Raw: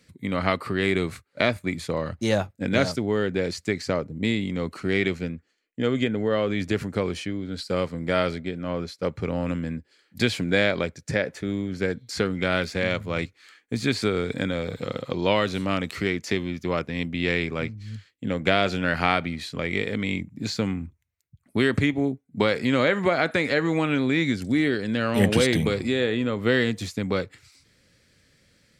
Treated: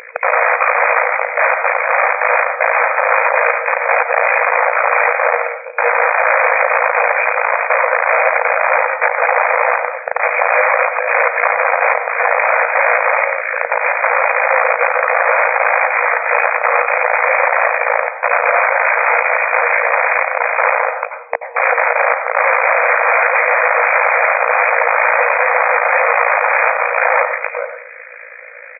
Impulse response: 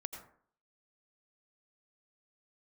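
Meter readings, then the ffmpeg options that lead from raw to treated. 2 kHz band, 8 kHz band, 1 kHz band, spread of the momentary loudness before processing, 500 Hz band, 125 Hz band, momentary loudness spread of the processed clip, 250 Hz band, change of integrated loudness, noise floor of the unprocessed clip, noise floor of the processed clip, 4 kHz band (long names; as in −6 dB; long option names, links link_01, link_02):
+17.0 dB, below −30 dB, +20.0 dB, 9 LU, +9.5 dB, below −40 dB, 4 LU, below −40 dB, +12.0 dB, −67 dBFS, −32 dBFS, below −35 dB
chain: -filter_complex "[0:a]aeval=exprs='if(lt(val(0),0),0.708*val(0),val(0))':channel_layout=same,aeval=exprs='0.631*(cos(1*acos(clip(val(0)/0.631,-1,1)))-cos(1*PI/2))+0.0282*(cos(4*acos(clip(val(0)/0.631,-1,1)))-cos(4*PI/2))+0.0631*(cos(5*acos(clip(val(0)/0.631,-1,1)))-cos(5*PI/2))+0.02*(cos(8*acos(clip(val(0)/0.631,-1,1)))-cos(8*PI/2))':channel_layout=same,acompressor=threshold=-30dB:ratio=2,aeval=exprs='(tanh(25.1*val(0)+0.7)-tanh(0.7))/25.1':channel_layout=same,asplit=2[link_01][link_02];[link_02]adelay=437.3,volume=-16dB,highshelf=frequency=4000:gain=-9.84[link_03];[link_01][link_03]amix=inputs=2:normalize=0,aeval=exprs='val(0)+0.00501*(sin(2*PI*60*n/s)+sin(2*PI*2*60*n/s)/2+sin(2*PI*3*60*n/s)/3+sin(2*PI*4*60*n/s)/4+sin(2*PI*5*60*n/s)/5)':channel_layout=same,tremolo=f=56:d=0.919,aeval=exprs='(mod(94.4*val(0)+1,2)-1)/94.4':channel_layout=same,asplit=2[link_04][link_05];[1:a]atrim=start_sample=2205,highshelf=frequency=2900:gain=11[link_06];[link_05][link_06]afir=irnorm=-1:irlink=0,volume=5.5dB[link_07];[link_04][link_07]amix=inputs=2:normalize=0,afftfilt=real='re*between(b*sr/4096,470,2500)':imag='im*between(b*sr/4096,470,2500)':win_size=4096:overlap=0.75,alimiter=level_in=30dB:limit=-1dB:release=50:level=0:latency=1,volume=-1dB"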